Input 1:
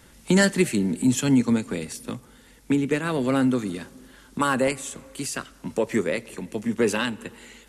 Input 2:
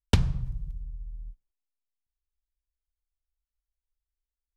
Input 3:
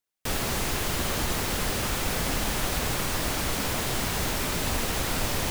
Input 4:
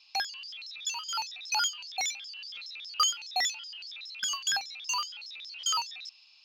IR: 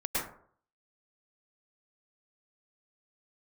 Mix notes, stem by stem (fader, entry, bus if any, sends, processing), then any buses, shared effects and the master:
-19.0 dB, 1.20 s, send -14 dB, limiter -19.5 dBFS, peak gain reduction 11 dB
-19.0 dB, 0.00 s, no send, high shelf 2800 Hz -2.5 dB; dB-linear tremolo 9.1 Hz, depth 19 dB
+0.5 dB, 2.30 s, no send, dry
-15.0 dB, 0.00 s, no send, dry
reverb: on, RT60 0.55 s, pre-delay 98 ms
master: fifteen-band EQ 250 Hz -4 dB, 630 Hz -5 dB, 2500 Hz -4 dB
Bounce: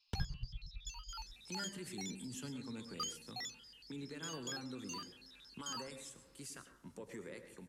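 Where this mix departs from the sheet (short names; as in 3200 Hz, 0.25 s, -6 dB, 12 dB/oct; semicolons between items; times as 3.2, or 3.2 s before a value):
stem 2 -19.0 dB -> -8.5 dB; stem 3: muted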